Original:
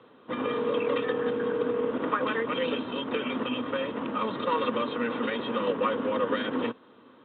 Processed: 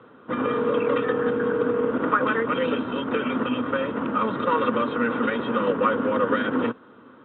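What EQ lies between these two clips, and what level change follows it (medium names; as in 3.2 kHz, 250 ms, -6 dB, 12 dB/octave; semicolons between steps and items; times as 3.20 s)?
distance through air 270 m; bass shelf 240 Hz +5 dB; peaking EQ 1.4 kHz +8.5 dB 0.37 oct; +4.0 dB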